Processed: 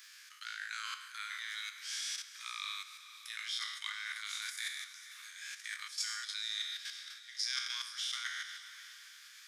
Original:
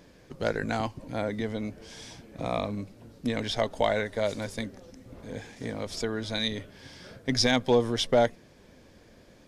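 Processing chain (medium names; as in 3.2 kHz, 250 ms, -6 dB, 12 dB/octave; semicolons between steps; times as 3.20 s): spectral sustain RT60 0.82 s; level held to a coarse grid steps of 11 dB; steep high-pass 1.2 kHz 72 dB/octave; reverse; compression 6:1, threshold -44 dBFS, peak gain reduction 22 dB; reverse; treble shelf 3.3 kHz +9 dB; on a send: echo that smears into a reverb 465 ms, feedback 42%, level -13 dB; on the sum: trim +3 dB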